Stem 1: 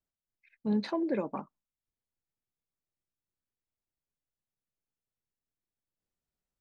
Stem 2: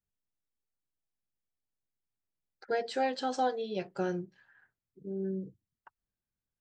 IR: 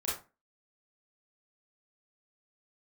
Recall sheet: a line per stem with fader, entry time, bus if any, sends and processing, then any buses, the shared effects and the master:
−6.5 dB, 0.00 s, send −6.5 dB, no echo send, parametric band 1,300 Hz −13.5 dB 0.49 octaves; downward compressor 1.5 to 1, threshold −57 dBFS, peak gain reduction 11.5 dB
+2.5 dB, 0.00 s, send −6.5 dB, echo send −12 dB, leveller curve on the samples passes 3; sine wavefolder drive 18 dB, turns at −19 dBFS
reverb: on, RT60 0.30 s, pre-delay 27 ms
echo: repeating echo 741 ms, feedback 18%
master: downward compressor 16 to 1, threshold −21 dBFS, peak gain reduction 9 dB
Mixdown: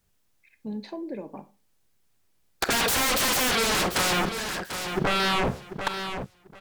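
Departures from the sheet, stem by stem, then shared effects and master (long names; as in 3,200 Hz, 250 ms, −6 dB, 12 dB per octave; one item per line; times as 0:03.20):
stem 1 −6.5 dB → +5.5 dB
reverb return −9.0 dB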